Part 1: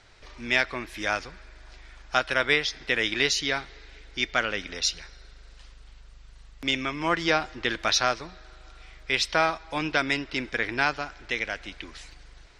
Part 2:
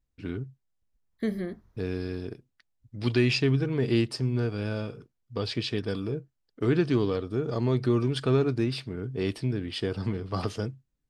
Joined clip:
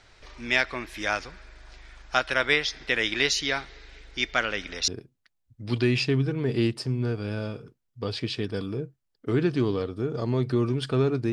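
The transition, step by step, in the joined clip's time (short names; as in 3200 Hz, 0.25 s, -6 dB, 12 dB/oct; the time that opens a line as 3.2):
part 1
4.88 switch to part 2 from 2.22 s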